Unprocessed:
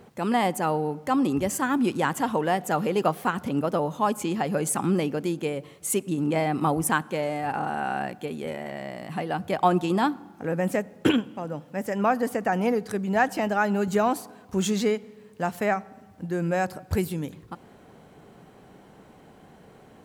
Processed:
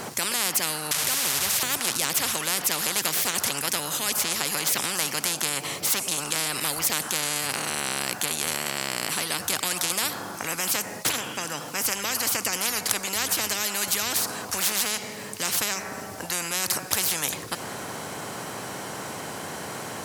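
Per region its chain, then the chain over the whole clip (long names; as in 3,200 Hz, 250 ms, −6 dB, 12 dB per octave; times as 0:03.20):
0:00.91–0:01.63: linear delta modulator 64 kbit/s, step −26 dBFS + guitar amp tone stack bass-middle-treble 10-0-10
whole clip: high-pass filter 110 Hz 24 dB per octave; flat-topped bell 7,700 Hz +8.5 dB; every bin compressed towards the loudest bin 10 to 1; level +2.5 dB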